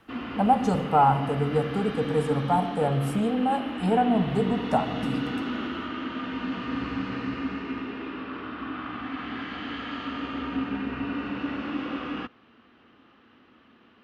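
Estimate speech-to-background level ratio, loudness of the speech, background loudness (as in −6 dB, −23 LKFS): 8.0 dB, −25.0 LKFS, −33.0 LKFS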